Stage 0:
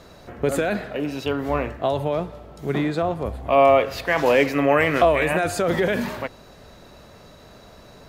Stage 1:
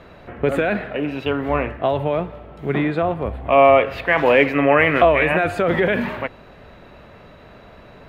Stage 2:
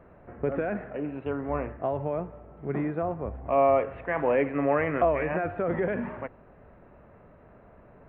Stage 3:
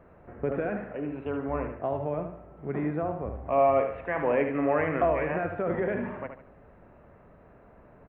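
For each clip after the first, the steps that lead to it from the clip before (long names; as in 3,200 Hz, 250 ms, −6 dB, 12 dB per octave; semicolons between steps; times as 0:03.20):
high shelf with overshoot 3,900 Hz −13.5 dB, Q 1.5; level +2.5 dB
Gaussian smoothing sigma 4.6 samples; level −8.5 dB
repeating echo 74 ms, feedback 33%, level −7.5 dB; level −1.5 dB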